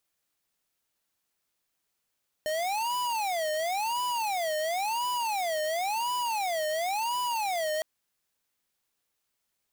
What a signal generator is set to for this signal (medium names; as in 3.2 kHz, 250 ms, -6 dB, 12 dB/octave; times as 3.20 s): siren wail 613–990 Hz 0.95 per s square -29.5 dBFS 5.36 s